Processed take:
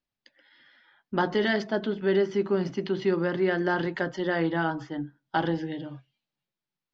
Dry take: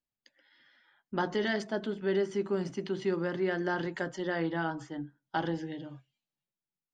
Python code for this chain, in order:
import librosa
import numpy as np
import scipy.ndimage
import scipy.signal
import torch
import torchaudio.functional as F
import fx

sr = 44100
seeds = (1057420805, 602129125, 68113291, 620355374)

y = scipy.signal.sosfilt(scipy.signal.butter(4, 5200.0, 'lowpass', fs=sr, output='sos'), x)
y = y * librosa.db_to_amplitude(5.5)